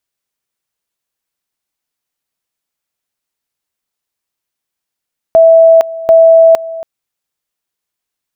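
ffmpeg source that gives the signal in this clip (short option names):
-f lavfi -i "aevalsrc='pow(10,(-1.5-18*gte(mod(t,0.74),0.46))/20)*sin(2*PI*656*t)':d=1.48:s=44100"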